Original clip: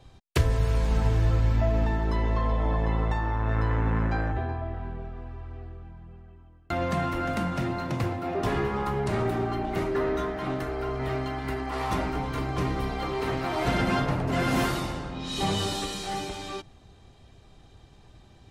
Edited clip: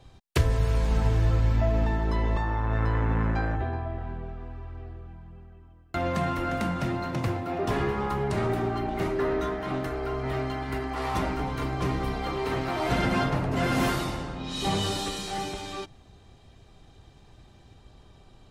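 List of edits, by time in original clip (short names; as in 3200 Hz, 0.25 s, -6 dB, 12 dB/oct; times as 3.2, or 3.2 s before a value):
2.37–3.13 cut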